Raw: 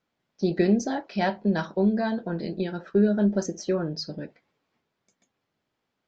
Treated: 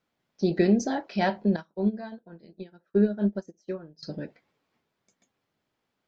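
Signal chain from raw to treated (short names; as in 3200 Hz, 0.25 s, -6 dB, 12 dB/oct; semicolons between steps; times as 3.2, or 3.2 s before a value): 1.56–4.03 upward expander 2.5:1, over -36 dBFS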